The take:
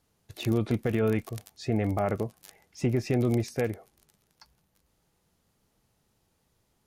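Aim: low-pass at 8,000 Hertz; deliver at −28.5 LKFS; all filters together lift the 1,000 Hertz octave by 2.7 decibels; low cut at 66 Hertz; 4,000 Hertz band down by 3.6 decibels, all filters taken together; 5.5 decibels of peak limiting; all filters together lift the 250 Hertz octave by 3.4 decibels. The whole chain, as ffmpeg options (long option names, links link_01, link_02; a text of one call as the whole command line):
ffmpeg -i in.wav -af "highpass=66,lowpass=8000,equalizer=frequency=250:width_type=o:gain=4,equalizer=frequency=1000:width_type=o:gain=4,equalizer=frequency=4000:width_type=o:gain=-4.5,volume=1.5dB,alimiter=limit=-16dB:level=0:latency=1" out.wav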